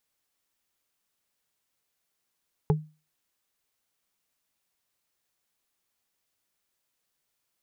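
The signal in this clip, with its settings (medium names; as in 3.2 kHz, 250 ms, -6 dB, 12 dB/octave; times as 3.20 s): wood hit, lowest mode 154 Hz, modes 3, decay 0.31 s, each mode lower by 3 dB, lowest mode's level -16.5 dB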